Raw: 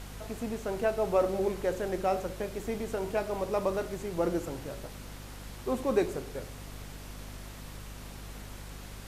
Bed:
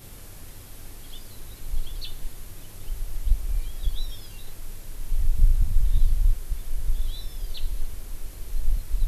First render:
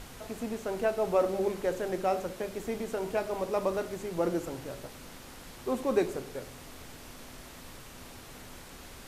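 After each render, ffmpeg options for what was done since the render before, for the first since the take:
-af "bandreject=f=50:t=h:w=6,bandreject=f=100:t=h:w=6,bandreject=f=150:t=h:w=6,bandreject=f=200:t=h:w=6"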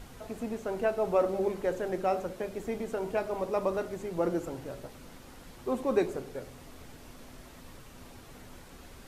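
-af "afftdn=nr=6:nf=-48"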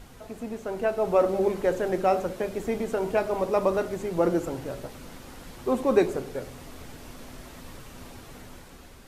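-af "dynaudnorm=f=400:g=5:m=6dB"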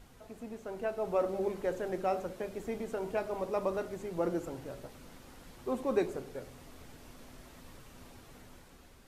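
-af "volume=-9dB"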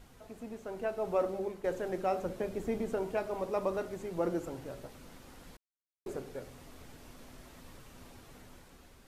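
-filter_complex "[0:a]asettb=1/sr,asplit=3[a][b][c];[a]atrim=end=2.234[d];[b]atrim=start=2.23:end=3.03,asetpts=PTS-STARTPTS,afade=t=in:d=0.004:c=qsin,afade=t=out:st=0.796:d=0.004:c=qsin,lowshelf=f=480:g=5.5[e];[c]atrim=start=3.026[f];[d][e]acrossfade=d=0.004:c1=hsin:c2=qsin[g];[g][f]acrossfade=d=0.004:c1=qsin:c2=hsin,asplit=4[h][i][j][k];[h]atrim=end=1.64,asetpts=PTS-STARTPTS,afade=t=out:st=1.22:d=0.42:silence=0.398107[l];[i]atrim=start=1.64:end=5.57,asetpts=PTS-STARTPTS,afade=t=in:d=0.004:c=hsin:silence=0.398107,afade=t=out:st=3.926:d=0.004:c=hsin[m];[j]atrim=start=5.57:end=6.06,asetpts=PTS-STARTPTS,volume=0[n];[k]atrim=start=6.06,asetpts=PTS-STARTPTS,afade=t=in:d=0.004:c=hsin[o];[l][m][n][o]concat=n=4:v=0:a=1"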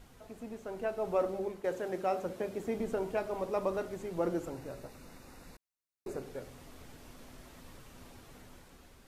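-filter_complex "[0:a]asettb=1/sr,asplit=3[a][b][c];[a]atrim=end=1.604[d];[b]atrim=start=1.6:end=2.78,asetpts=PTS-STARTPTS,afade=t=in:d=0.004:c=qsin,afade=t=out:st=1.176:d=0.004:c=qsin,highpass=f=160:p=1[e];[c]atrim=start=2.776[f];[d][e]acrossfade=d=0.004:c1=hsin:c2=qsin[g];[g][f]acrossfade=d=0.004:c1=qsin:c2=hsin,asettb=1/sr,asplit=3[h][i][j];[h]atrim=end=4.504[k];[i]atrim=start=4.5:end=6.22,asetpts=PTS-STARTPTS,afade=t=in:d=0.004:c=qsin,afade=t=out:st=1.716:d=0.004:c=qsin,asuperstop=centerf=3200:order=4:qfactor=5.8[l];[j]atrim=start=6.216[m];[k][l]acrossfade=d=0.004:c1=hsin:c2=qsin[n];[n][m]acrossfade=d=0.004:c1=qsin:c2=hsin"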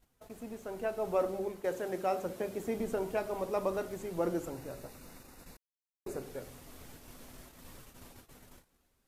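-af "agate=range=-18dB:threshold=-52dB:ratio=16:detection=peak,highshelf=f=8.9k:g=10"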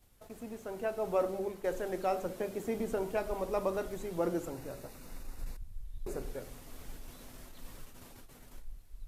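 -filter_complex "[1:a]volume=-23.5dB[a];[0:a][a]amix=inputs=2:normalize=0"

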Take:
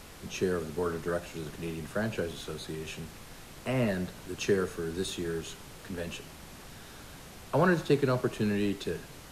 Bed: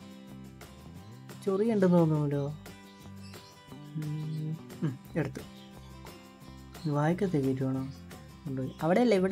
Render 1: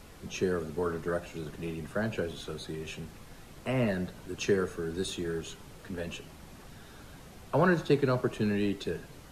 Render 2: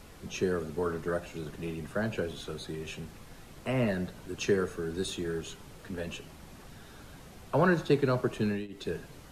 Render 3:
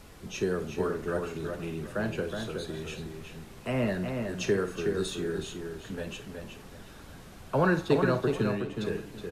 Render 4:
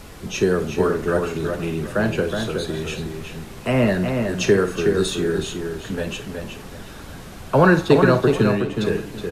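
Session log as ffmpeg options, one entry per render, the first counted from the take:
-af "afftdn=nr=6:nf=-49"
-filter_complex "[0:a]asplit=2[a][b];[a]atrim=end=8.68,asetpts=PTS-STARTPTS,afade=t=out:st=8.41:d=0.27:c=qsin:silence=0.0794328[c];[b]atrim=start=8.68,asetpts=PTS-STARTPTS,afade=t=in:d=0.27:c=qsin:silence=0.0794328[d];[c][d]concat=n=2:v=0:a=1"
-filter_complex "[0:a]asplit=2[a][b];[b]adelay=50,volume=-13dB[c];[a][c]amix=inputs=2:normalize=0,asplit=2[d][e];[e]adelay=369,lowpass=f=3.7k:p=1,volume=-5dB,asplit=2[f][g];[g]adelay=369,lowpass=f=3.7k:p=1,volume=0.25,asplit=2[h][i];[i]adelay=369,lowpass=f=3.7k:p=1,volume=0.25[j];[d][f][h][j]amix=inputs=4:normalize=0"
-af "volume=10.5dB,alimiter=limit=-2dB:level=0:latency=1"

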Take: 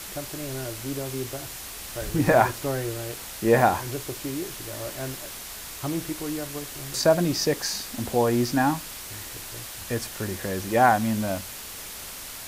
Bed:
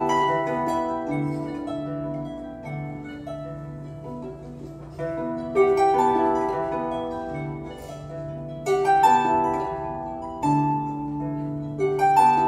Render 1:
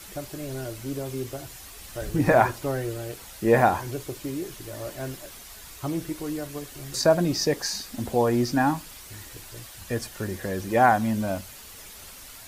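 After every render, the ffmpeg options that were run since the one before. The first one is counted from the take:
-af "afftdn=nr=8:nf=-39"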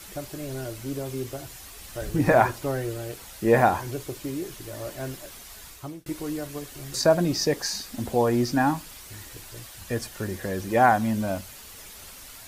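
-filter_complex "[0:a]asplit=2[a][b];[a]atrim=end=6.06,asetpts=PTS-STARTPTS,afade=t=out:st=5.65:d=0.41[c];[b]atrim=start=6.06,asetpts=PTS-STARTPTS,afade=t=in:d=0.004:c=hsin[d];[c][d]concat=n=2:v=0:a=1"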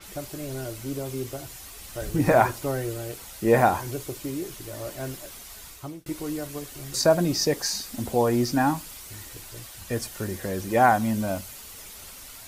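-af "bandreject=f=1.7k:w=24,adynamicequalizer=threshold=0.00562:dfrequency=5800:dqfactor=0.7:tfrequency=5800:tqfactor=0.7:attack=5:release=100:ratio=0.375:range=2:mode=boostabove:tftype=highshelf"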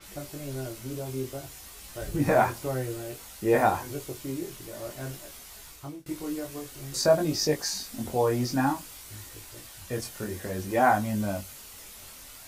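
-af "flanger=delay=19.5:depth=4.1:speed=0.54"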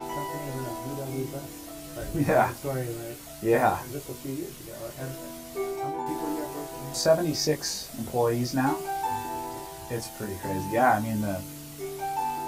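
-filter_complex "[1:a]volume=-13dB[a];[0:a][a]amix=inputs=2:normalize=0"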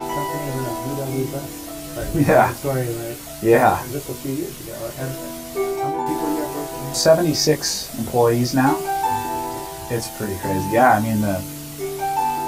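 -af "volume=8.5dB,alimiter=limit=-3dB:level=0:latency=1"

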